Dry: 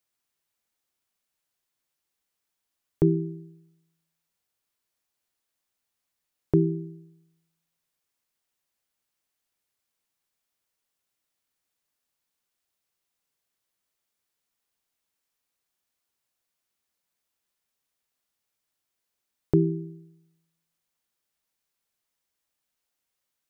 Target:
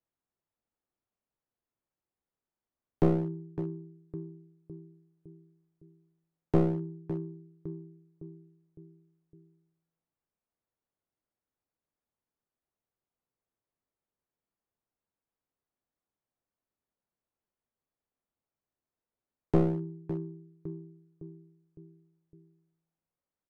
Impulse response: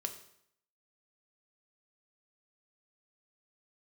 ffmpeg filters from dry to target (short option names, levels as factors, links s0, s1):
-filter_complex "[0:a]asplit=2[s0][s1];[s1]adelay=559,lowpass=f=830:p=1,volume=0.251,asplit=2[s2][s3];[s3]adelay=559,lowpass=f=830:p=1,volume=0.52,asplit=2[s4][s5];[s5]adelay=559,lowpass=f=830:p=1,volume=0.52,asplit=2[s6][s7];[s7]adelay=559,lowpass=f=830:p=1,volume=0.52,asplit=2[s8][s9];[s9]adelay=559,lowpass=f=830:p=1,volume=0.52[s10];[s0][s2][s4][s6][s8][s10]amix=inputs=6:normalize=0,adynamicsmooth=sensitivity=2.5:basefreq=1100,aeval=exprs='clip(val(0),-1,0.0355)':c=same"